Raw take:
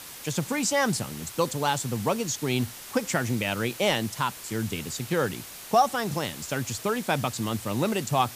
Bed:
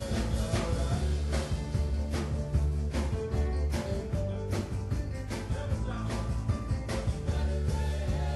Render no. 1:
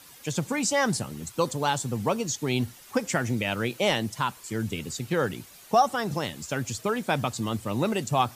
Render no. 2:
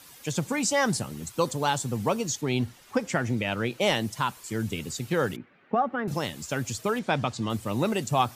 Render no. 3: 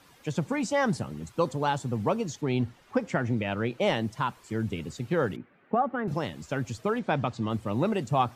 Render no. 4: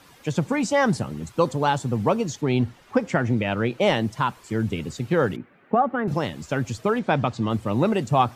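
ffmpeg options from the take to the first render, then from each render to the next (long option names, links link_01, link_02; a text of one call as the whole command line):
ffmpeg -i in.wav -af "afftdn=noise_reduction=10:noise_floor=-42" out.wav
ffmpeg -i in.wav -filter_complex "[0:a]asettb=1/sr,asplit=3[link_01][link_02][link_03];[link_01]atrim=end=2.414[link_04];[link_02]atrim=start=2.41:end=3.81,asetpts=PTS-STARTPTS,afade=type=in:duration=0.004:curve=qsin,afade=type=out:start_time=1.396:duration=0.004:curve=qsin,lowpass=frequency=4000:poles=1[link_05];[link_03]atrim=start=3.806[link_06];[link_04][link_05]acrossfade=duration=0.004:curve1=hsin:curve2=qsin[link_07];[link_07][link_06]acrossfade=duration=0.004:curve1=qsin:curve2=hsin,asettb=1/sr,asplit=3[link_08][link_09][link_10];[link_08]atrim=end=5.364[link_11];[link_09]atrim=start=5.36:end=6.08,asetpts=PTS-STARTPTS,afade=type=in:duration=0.004:curve=qsin,afade=type=out:start_time=0.716:duration=0.004:curve=qsin,highpass=160,equalizer=frequency=250:width_type=q:width=4:gain=5,equalizer=frequency=680:width_type=q:width=4:gain=-6,equalizer=frequency=990:width_type=q:width=4:gain=-8,lowpass=frequency=2100:width=0.5412,lowpass=frequency=2100:width=1.3066[link_12];[link_10]atrim=start=6.076[link_13];[link_11][link_12]acrossfade=duration=0.004:curve1=hsin:curve2=qsin[link_14];[link_14][link_13]acrossfade=duration=0.004:curve1=qsin:curve2=hsin,asettb=1/sr,asplit=3[link_15][link_16][link_17];[link_15]atrim=end=6.994[link_18];[link_16]atrim=start=6.99:end=7.5,asetpts=PTS-STARTPTS,afade=type=in:duration=0.004:curve=qsin,afade=type=out:start_time=0.506:duration=0.004:curve=qsin,lowpass=5700[link_19];[link_17]atrim=start=7.496[link_20];[link_18][link_19]acrossfade=duration=0.004:curve1=hsin:curve2=qsin[link_21];[link_21][link_20]acrossfade=duration=0.004:curve1=qsin:curve2=hsin" out.wav
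ffmpeg -i in.wav -af "lowpass=frequency=1700:poles=1" out.wav
ffmpeg -i in.wav -af "volume=5.5dB" out.wav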